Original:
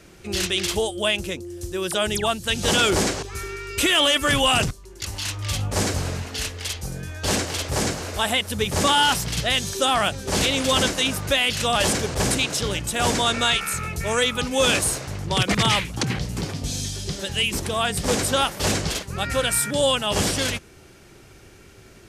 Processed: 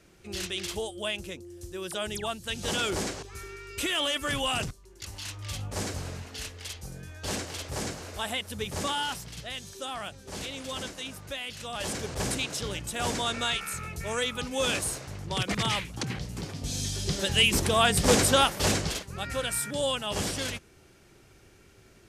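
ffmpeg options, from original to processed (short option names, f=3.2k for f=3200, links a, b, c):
-af "volume=7dB,afade=t=out:st=8.68:d=0.64:silence=0.501187,afade=t=in:st=11.71:d=0.4:silence=0.421697,afade=t=in:st=16.52:d=0.76:silence=0.334965,afade=t=out:st=18.15:d=0.96:silence=0.334965"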